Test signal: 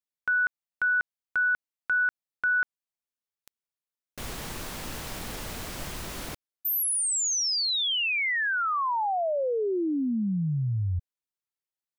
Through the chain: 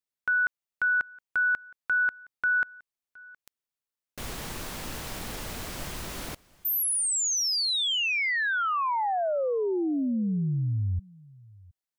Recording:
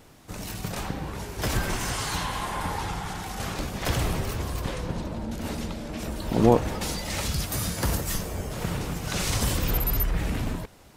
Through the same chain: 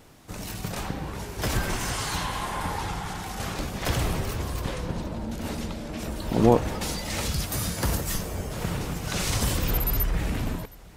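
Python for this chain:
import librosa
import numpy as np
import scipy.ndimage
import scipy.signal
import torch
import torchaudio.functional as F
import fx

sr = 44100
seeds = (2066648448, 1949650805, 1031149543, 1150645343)

y = x + 10.0 ** (-24.0 / 20.0) * np.pad(x, (int(717 * sr / 1000.0), 0))[:len(x)]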